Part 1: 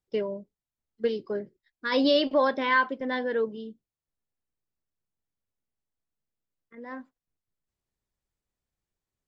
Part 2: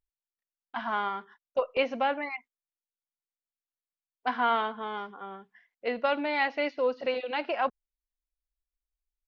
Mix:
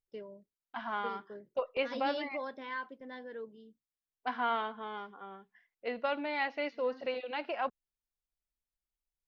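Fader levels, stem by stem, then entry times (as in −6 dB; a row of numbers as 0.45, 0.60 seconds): −16.5, −6.0 decibels; 0.00, 0.00 seconds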